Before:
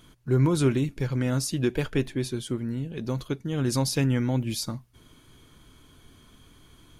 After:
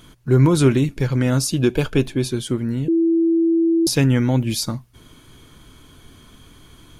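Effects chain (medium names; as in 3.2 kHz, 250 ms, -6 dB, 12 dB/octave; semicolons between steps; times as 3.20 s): 1.37–2.31 s: band-stop 1.9 kHz, Q 5.3; 2.88–3.87 s: bleep 331 Hz -21 dBFS; trim +7.5 dB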